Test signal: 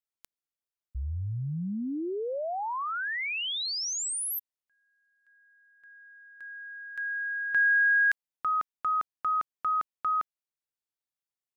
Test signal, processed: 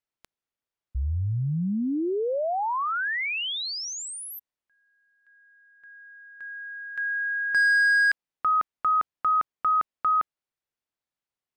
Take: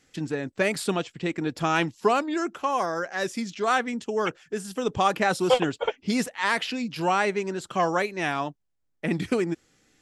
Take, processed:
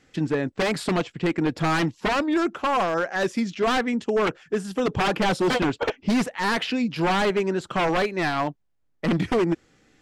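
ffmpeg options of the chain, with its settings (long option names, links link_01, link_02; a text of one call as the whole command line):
ffmpeg -i in.wav -af "aeval=exprs='0.0841*(abs(mod(val(0)/0.0841+3,4)-2)-1)':channel_layout=same,lowpass=frequency=2600:poles=1,volume=6dB" out.wav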